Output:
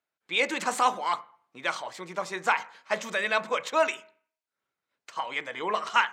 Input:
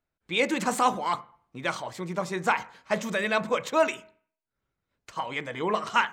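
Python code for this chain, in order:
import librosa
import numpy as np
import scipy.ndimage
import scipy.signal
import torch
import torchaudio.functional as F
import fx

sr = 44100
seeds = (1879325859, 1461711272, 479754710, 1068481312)

y = fx.weighting(x, sr, curve='A')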